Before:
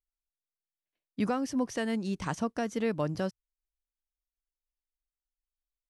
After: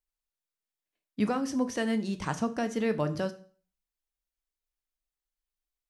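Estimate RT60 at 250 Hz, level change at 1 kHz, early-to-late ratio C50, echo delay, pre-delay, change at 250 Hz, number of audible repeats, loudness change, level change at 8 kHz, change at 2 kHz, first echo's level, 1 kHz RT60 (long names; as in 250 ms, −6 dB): 0.40 s, +1.0 dB, 15.0 dB, no echo audible, 6 ms, +1.5 dB, no echo audible, +1.5 dB, +1.5 dB, +2.0 dB, no echo audible, 0.45 s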